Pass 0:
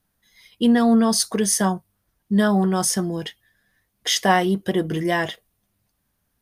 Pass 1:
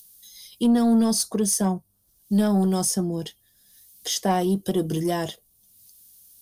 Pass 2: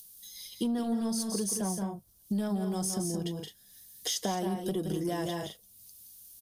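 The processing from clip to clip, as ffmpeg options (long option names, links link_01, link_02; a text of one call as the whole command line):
ffmpeg -i in.wav -filter_complex "[0:a]equalizer=frequency=2000:width_type=o:width=1.7:gain=-14.5,acrossover=split=150|2900[link_01][link_02][link_03];[link_03]acompressor=mode=upward:threshold=-31dB:ratio=2.5[link_04];[link_01][link_02][link_04]amix=inputs=3:normalize=0,asoftclip=type=tanh:threshold=-12dB" out.wav
ffmpeg -i in.wav -filter_complex "[0:a]asplit=2[link_01][link_02];[link_02]aecho=0:1:172|212.8:0.447|0.282[link_03];[link_01][link_03]amix=inputs=2:normalize=0,acompressor=threshold=-28dB:ratio=6,volume=-1dB" out.wav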